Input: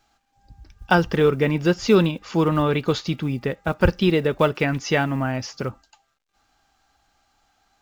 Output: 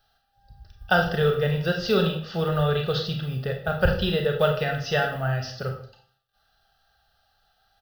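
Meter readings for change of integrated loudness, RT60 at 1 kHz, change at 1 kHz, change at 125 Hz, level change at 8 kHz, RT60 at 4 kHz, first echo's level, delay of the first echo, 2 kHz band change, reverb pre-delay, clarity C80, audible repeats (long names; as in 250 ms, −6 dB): −3.0 dB, 0.50 s, −3.0 dB, −1.5 dB, can't be measured, 0.45 s, −21.5 dB, 150 ms, −1.0 dB, 27 ms, 11.0 dB, 1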